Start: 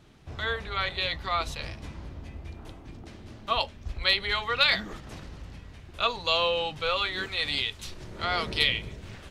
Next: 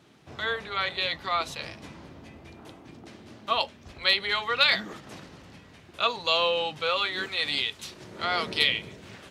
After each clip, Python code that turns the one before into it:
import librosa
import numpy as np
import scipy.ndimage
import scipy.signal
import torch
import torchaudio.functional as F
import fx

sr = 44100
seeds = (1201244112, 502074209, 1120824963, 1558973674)

y = scipy.signal.sosfilt(scipy.signal.butter(2, 160.0, 'highpass', fs=sr, output='sos'), x)
y = F.gain(torch.from_numpy(y), 1.0).numpy()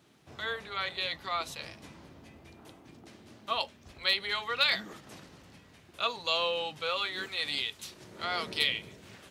y = fx.high_shelf(x, sr, hz=8600.0, db=10.0)
y = F.gain(torch.from_numpy(y), -6.0).numpy()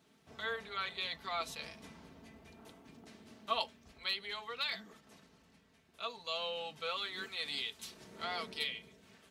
y = x + 0.51 * np.pad(x, (int(4.5 * sr / 1000.0), 0))[:len(x)]
y = fx.rider(y, sr, range_db=4, speed_s=0.5)
y = F.gain(torch.from_numpy(y), -8.0).numpy()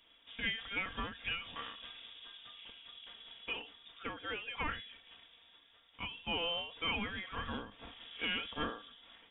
y = fx.self_delay(x, sr, depth_ms=0.071)
y = fx.freq_invert(y, sr, carrier_hz=3600)
y = fx.end_taper(y, sr, db_per_s=110.0)
y = F.gain(torch.from_numpy(y), 3.5).numpy()